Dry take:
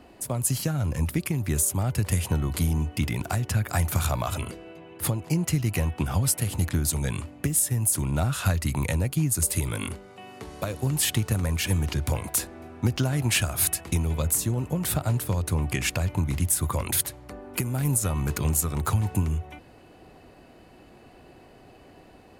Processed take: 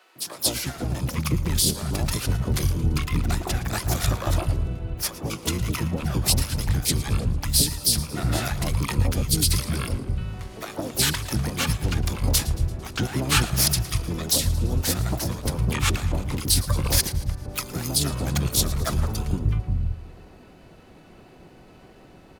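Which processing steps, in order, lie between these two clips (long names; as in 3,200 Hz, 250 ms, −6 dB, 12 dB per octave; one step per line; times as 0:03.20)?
three-band delay without the direct sound highs, mids, lows 160/520 ms, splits 160/950 Hz
pitch-shifted copies added −12 semitones 0 dB, +5 semitones −10 dB, +7 semitones −13 dB
feedback echo with a swinging delay time 113 ms, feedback 55%, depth 72 cents, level −17 dB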